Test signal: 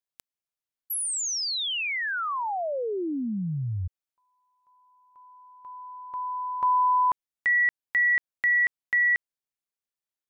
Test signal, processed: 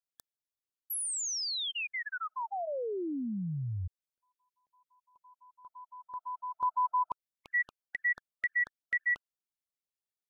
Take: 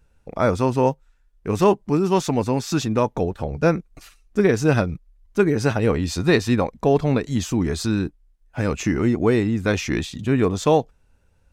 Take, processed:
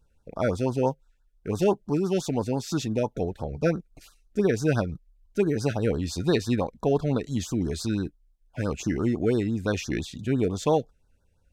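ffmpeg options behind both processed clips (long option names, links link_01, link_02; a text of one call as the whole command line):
ffmpeg -i in.wav -af "afftfilt=real='re*(1-between(b*sr/1024,890*pow(2500/890,0.5+0.5*sin(2*PI*5.9*pts/sr))/1.41,890*pow(2500/890,0.5+0.5*sin(2*PI*5.9*pts/sr))*1.41))':imag='im*(1-between(b*sr/1024,890*pow(2500/890,0.5+0.5*sin(2*PI*5.9*pts/sr))/1.41,890*pow(2500/890,0.5+0.5*sin(2*PI*5.9*pts/sr))*1.41))':win_size=1024:overlap=0.75,volume=-5.5dB" out.wav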